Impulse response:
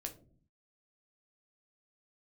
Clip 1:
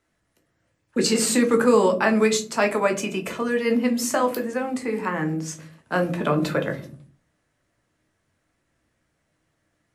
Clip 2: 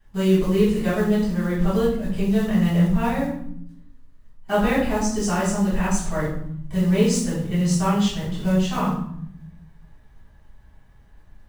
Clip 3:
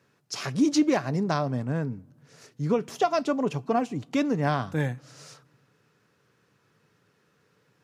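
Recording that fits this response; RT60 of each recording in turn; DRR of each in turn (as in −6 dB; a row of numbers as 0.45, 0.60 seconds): 1; 0.45 s, 0.70 s, non-exponential decay; 3.0, −12.5, 17.0 decibels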